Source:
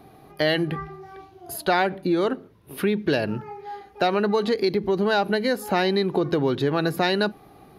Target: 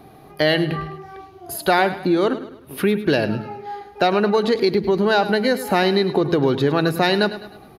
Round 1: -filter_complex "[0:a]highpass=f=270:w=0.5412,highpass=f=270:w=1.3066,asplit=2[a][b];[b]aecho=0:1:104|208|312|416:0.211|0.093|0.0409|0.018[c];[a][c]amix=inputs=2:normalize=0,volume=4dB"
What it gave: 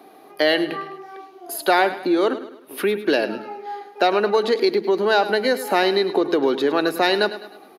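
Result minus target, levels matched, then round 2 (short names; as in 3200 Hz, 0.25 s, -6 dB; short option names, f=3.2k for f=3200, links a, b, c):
250 Hz band -2.5 dB
-filter_complex "[0:a]asplit=2[a][b];[b]aecho=0:1:104|208|312|416:0.211|0.093|0.0409|0.018[c];[a][c]amix=inputs=2:normalize=0,volume=4dB"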